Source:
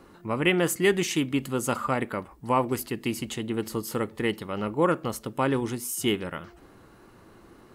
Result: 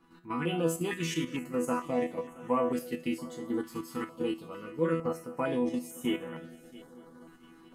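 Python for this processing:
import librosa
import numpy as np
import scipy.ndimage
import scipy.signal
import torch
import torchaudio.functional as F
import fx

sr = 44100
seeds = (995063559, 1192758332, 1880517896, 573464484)

p1 = fx.low_shelf(x, sr, hz=100.0, db=-7.5)
p2 = fx.resonator_bank(p1, sr, root=52, chord='fifth', decay_s=0.34)
p3 = fx.level_steps(p2, sr, step_db=23)
p4 = p2 + F.gain(torch.from_numpy(p3), 3.0).numpy()
p5 = fx.high_shelf(p4, sr, hz=2600.0, db=-8.0)
p6 = p5 + fx.echo_heads(p5, sr, ms=226, heads='first and third', feedback_pct=58, wet_db=-21.0, dry=0)
p7 = fx.filter_held_notch(p6, sr, hz=2.2, low_hz=570.0, high_hz=4700.0)
y = F.gain(torch.from_numpy(p7), 8.0).numpy()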